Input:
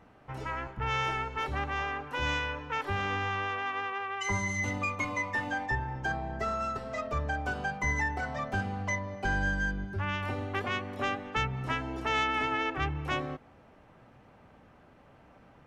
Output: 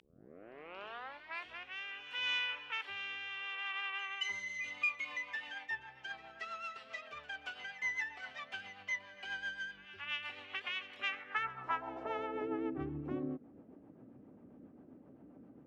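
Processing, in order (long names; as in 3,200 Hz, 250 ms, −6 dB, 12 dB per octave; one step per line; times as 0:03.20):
turntable start at the beginning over 1.79 s
in parallel at +2 dB: downward compressor, threshold −43 dBFS, peak gain reduction 18 dB
on the sum: rotating-speaker cabinet horn 0.7 Hz, later 7.5 Hz, at 0:04.54
echo ahead of the sound 227 ms −17 dB
band-pass filter sweep 2,900 Hz → 280 Hz, 0:10.95–0:12.73
level +2 dB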